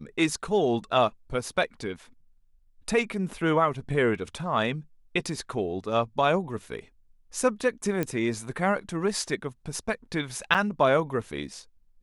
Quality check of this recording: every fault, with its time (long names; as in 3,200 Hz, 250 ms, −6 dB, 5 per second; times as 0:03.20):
0:08.03: click −14 dBFS
0:10.54–0:10.55: drop-out 6.5 ms